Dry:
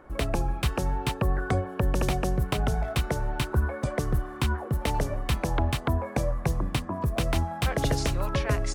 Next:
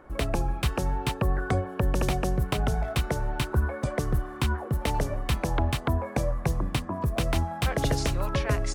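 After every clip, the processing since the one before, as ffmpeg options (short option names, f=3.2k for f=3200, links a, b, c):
-af anull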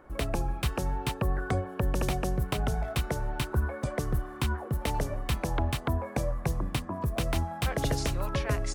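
-af "highshelf=f=11k:g=4.5,volume=-3dB"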